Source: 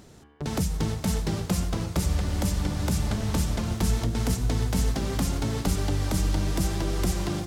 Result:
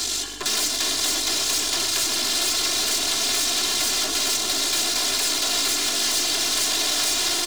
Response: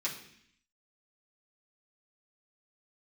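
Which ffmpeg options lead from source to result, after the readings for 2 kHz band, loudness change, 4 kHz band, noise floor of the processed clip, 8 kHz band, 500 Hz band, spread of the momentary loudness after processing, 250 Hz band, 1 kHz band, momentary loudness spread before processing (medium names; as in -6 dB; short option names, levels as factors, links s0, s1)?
+11.5 dB, +7.5 dB, +18.0 dB, -26 dBFS, +15.5 dB, 0.0 dB, 1 LU, -7.5 dB, +5.0 dB, 2 LU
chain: -filter_complex "[0:a]aeval=exprs='0.178*sin(PI/2*4.47*val(0)/0.178)':c=same,equalizer=f=250:t=o:w=1:g=4,equalizer=f=1000:t=o:w=1:g=-6,equalizer=f=2000:t=o:w=1:g=-5,equalizer=f=4000:t=o:w=1:g=8,equalizer=f=8000:t=o:w=1:g=7,areverse,acompressor=mode=upward:threshold=0.0794:ratio=2.5,areverse,highpass=f=180:p=1,aeval=exprs='val(0)+0.0251*(sin(2*PI*50*n/s)+sin(2*PI*2*50*n/s)/2+sin(2*PI*3*50*n/s)/3+sin(2*PI*4*50*n/s)/4+sin(2*PI*5*50*n/s)/5)':c=same,acrossover=split=360|1800|6200[s0][s1][s2][s3];[s0]acompressor=threshold=0.0501:ratio=4[s4];[s1]acompressor=threshold=0.0447:ratio=4[s5];[s2]acompressor=threshold=0.0398:ratio=4[s6];[s3]acompressor=threshold=0.0282:ratio=4[s7];[s4][s5][s6][s7]amix=inputs=4:normalize=0,aeval=exprs='(tanh(28.2*val(0)+0.8)-tanh(0.8))/28.2':c=same,tiltshelf=f=1100:g=-7.5,aecho=1:1:2.9:0.94,asplit=2[s8][s9];[s9]highpass=f=720:p=1,volume=3.98,asoftclip=type=tanh:threshold=0.266[s10];[s8][s10]amix=inputs=2:normalize=0,lowpass=f=5600:p=1,volume=0.501,aecho=1:1:126|252|378|504|630|756:0.299|0.164|0.0903|0.0497|0.0273|0.015"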